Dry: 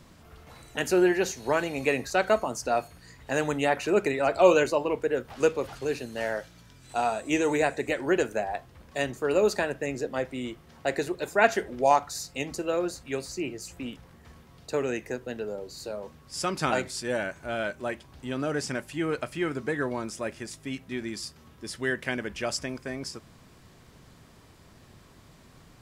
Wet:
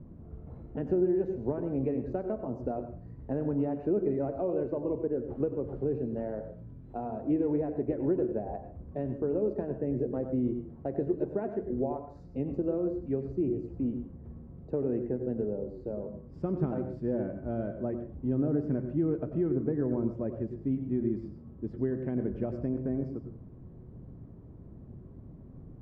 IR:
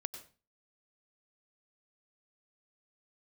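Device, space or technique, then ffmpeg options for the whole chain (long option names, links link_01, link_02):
television next door: -filter_complex "[0:a]acompressor=threshold=-28dB:ratio=6,lowpass=340[link_01];[1:a]atrim=start_sample=2205[link_02];[link_01][link_02]afir=irnorm=-1:irlink=0,volume=9dB"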